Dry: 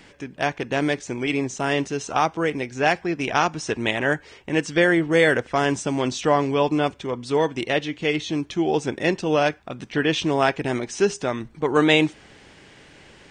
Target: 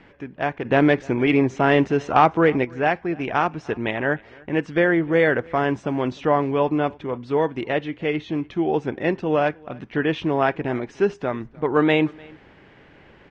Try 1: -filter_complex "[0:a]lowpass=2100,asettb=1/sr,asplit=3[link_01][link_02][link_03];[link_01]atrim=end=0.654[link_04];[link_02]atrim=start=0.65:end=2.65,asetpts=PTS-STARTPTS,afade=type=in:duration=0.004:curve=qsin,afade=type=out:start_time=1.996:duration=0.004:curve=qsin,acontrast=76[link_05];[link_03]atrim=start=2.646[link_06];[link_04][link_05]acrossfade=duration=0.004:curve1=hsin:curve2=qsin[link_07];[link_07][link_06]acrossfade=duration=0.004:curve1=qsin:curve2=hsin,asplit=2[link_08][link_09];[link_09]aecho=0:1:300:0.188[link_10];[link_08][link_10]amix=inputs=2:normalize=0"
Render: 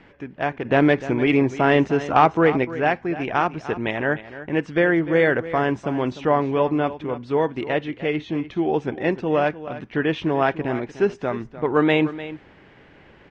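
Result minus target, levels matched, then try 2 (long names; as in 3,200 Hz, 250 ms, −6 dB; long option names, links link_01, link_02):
echo-to-direct +11 dB
-filter_complex "[0:a]lowpass=2100,asettb=1/sr,asplit=3[link_01][link_02][link_03];[link_01]atrim=end=0.654[link_04];[link_02]atrim=start=0.65:end=2.65,asetpts=PTS-STARTPTS,afade=type=in:duration=0.004:curve=qsin,afade=type=out:start_time=1.996:duration=0.004:curve=qsin,acontrast=76[link_05];[link_03]atrim=start=2.646[link_06];[link_04][link_05]acrossfade=duration=0.004:curve1=hsin:curve2=qsin[link_07];[link_07][link_06]acrossfade=duration=0.004:curve1=qsin:curve2=hsin,asplit=2[link_08][link_09];[link_09]aecho=0:1:300:0.0531[link_10];[link_08][link_10]amix=inputs=2:normalize=0"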